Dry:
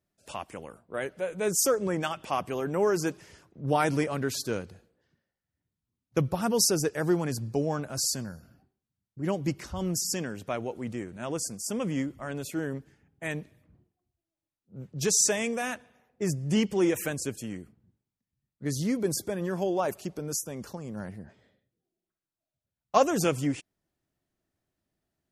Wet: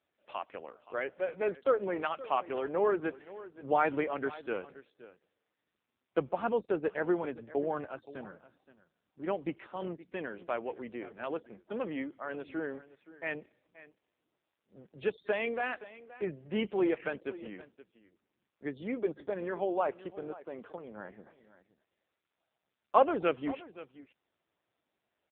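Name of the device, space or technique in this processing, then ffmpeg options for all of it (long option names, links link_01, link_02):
satellite phone: -af "highpass=370,lowpass=3200,aecho=1:1:523:0.133" -ar 8000 -c:a libopencore_amrnb -b:a 5900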